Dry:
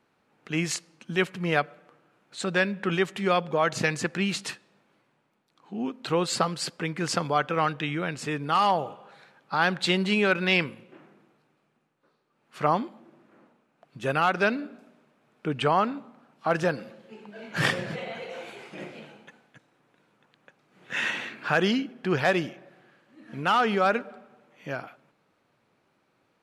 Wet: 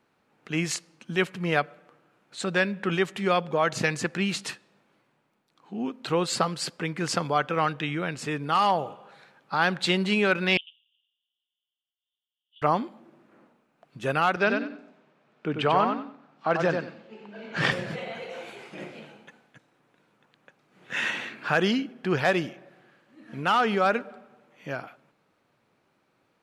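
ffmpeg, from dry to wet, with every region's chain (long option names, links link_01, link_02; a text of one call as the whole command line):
ffmpeg -i in.wav -filter_complex "[0:a]asettb=1/sr,asplit=3[link_01][link_02][link_03];[link_01]atrim=end=10.574[link_04];[link_02]atrim=start=10.57:end=12.62,asetpts=PTS-STARTPTS,afade=type=in:duration=0.004:curve=qsin,afade=type=out:start_time=2.046:duration=0.004:curve=qsin,asuperpass=centerf=3200:order=8:qfactor=4.5,aecho=1:1:95:0.299,atrim=end_sample=90405[link_05];[link_03]atrim=start=12.616[link_06];[link_04][link_05]acrossfade=duration=0.004:curve1=hsin:curve2=qsin[link_07];[link_07][link_06]acrossfade=duration=0.004:curve1=qsin:curve2=hsin,asettb=1/sr,asplit=3[link_08][link_09][link_10];[link_08]atrim=end=14.364[link_11];[link_09]atrim=start=14.36:end=17.72,asetpts=PTS-STARTPTS,afade=type=in:duration=0.004:curve=qsin,afade=type=out:start_time=3.356:duration=0.004:curve=qsin,highpass=130,lowpass=5300,aecho=1:1:93|186|279:0.531|0.127|0.0306,atrim=end_sample=148176[link_12];[link_10]atrim=start=17.716[link_13];[link_11][link_12]acrossfade=duration=0.004:curve1=hsin:curve2=qsin[link_14];[link_14][link_13]acrossfade=duration=0.004:curve1=qsin:curve2=hsin" out.wav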